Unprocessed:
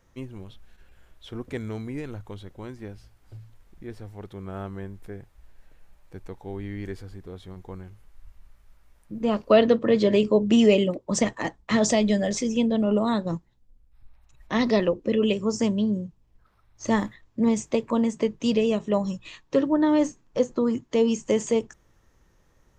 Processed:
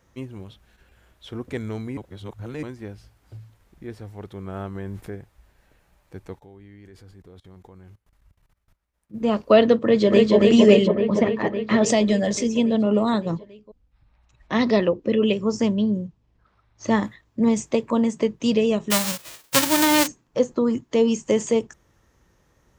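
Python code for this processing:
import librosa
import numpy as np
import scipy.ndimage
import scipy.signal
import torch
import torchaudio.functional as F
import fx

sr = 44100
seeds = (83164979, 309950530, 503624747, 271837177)

y = fx.env_flatten(x, sr, amount_pct=100, at=(4.75, 5.15))
y = fx.level_steps(y, sr, step_db=24, at=(6.38, 9.13), fade=0.02)
y = fx.echo_throw(y, sr, start_s=9.79, length_s=0.56, ms=280, feedback_pct=75, wet_db=-1.0)
y = fx.lowpass(y, sr, hz=fx.line((10.87, 1800.0), (11.85, 3500.0)), slope=12, at=(10.87, 11.85), fade=0.02)
y = fx.lowpass(y, sr, hz=5500.0, slope=12, at=(13.3, 17.03))
y = fx.envelope_flatten(y, sr, power=0.1, at=(18.9, 20.06), fade=0.02)
y = fx.edit(y, sr, fx.reverse_span(start_s=1.97, length_s=0.66), tone=tone)
y = scipy.signal.sosfilt(scipy.signal.butter(2, 47.0, 'highpass', fs=sr, output='sos'), y)
y = y * 10.0 ** (2.5 / 20.0)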